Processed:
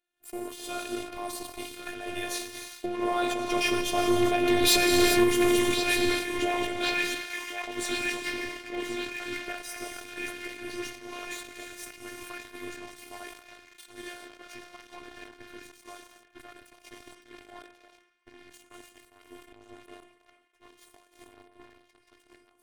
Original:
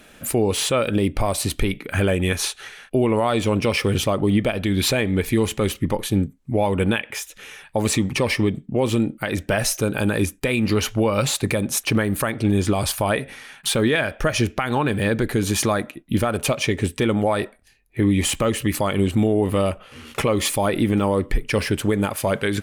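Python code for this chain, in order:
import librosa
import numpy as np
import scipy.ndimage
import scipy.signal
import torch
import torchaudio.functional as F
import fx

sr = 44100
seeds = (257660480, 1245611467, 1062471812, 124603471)

p1 = fx.doppler_pass(x, sr, speed_mps=12, closest_m=5.2, pass_at_s=4.87)
p2 = fx.hum_notches(p1, sr, base_hz=50, count=7)
p3 = p2 + fx.echo_banded(p2, sr, ms=1080, feedback_pct=74, hz=2000.0, wet_db=-6, dry=0)
p4 = fx.rev_gated(p3, sr, seeds[0], gate_ms=440, shape='flat', drr_db=2.0)
p5 = fx.chorus_voices(p4, sr, voices=6, hz=0.17, base_ms=12, depth_ms=3.7, mix_pct=30)
p6 = fx.highpass(p5, sr, hz=150.0, slope=6)
p7 = fx.volume_shaper(p6, sr, bpm=126, per_beat=1, depth_db=-15, release_ms=164.0, shape='slow start')
p8 = p6 + (p7 * librosa.db_to_amplitude(1.5))
p9 = fx.leveller(p8, sr, passes=3)
p10 = fx.robotise(p9, sr, hz=354.0)
p11 = fx.sustainer(p10, sr, db_per_s=81.0)
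y = p11 * librosa.db_to_amplitude(-8.5)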